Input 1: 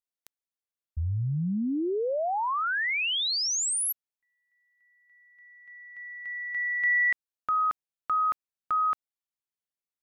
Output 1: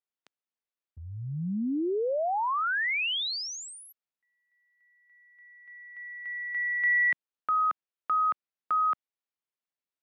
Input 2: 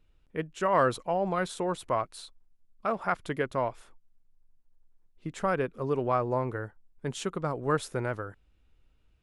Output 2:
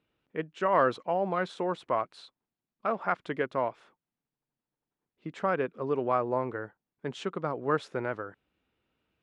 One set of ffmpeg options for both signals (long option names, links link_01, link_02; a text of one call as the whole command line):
ffmpeg -i in.wav -af "highpass=180,lowpass=3700" out.wav